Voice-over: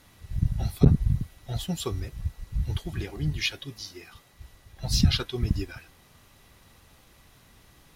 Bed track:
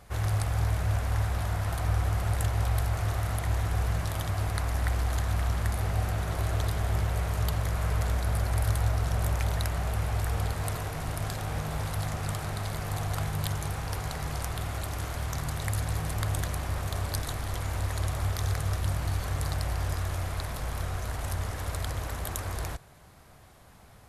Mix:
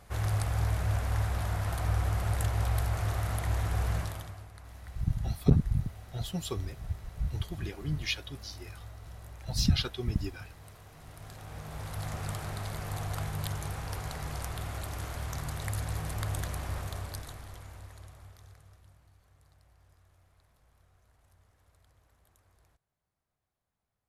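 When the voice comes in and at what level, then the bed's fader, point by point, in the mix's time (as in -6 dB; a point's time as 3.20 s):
4.65 s, -4.5 dB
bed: 3.99 s -2 dB
4.49 s -20 dB
10.81 s -20 dB
12.14 s -4 dB
16.76 s -4 dB
19.13 s -33 dB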